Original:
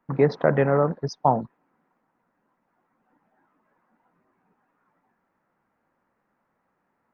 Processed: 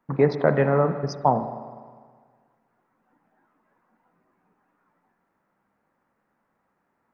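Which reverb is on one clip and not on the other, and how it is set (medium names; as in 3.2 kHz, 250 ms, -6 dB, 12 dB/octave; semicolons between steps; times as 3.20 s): spring tank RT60 1.7 s, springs 40/50 ms, chirp 45 ms, DRR 9.5 dB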